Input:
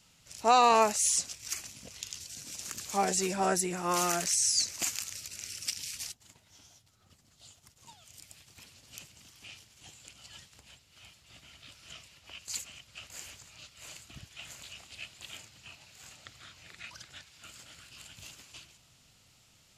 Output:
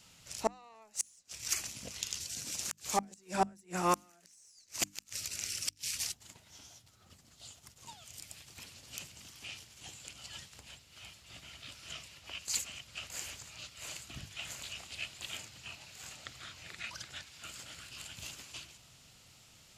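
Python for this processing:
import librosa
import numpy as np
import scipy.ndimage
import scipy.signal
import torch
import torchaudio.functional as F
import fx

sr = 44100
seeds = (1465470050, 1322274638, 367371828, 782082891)

y = fx.diode_clip(x, sr, knee_db=-16.0)
y = fx.gate_flip(y, sr, shuts_db=-20.0, range_db=-36)
y = fx.hum_notches(y, sr, base_hz=50, count=6)
y = y * librosa.db_to_amplitude(3.5)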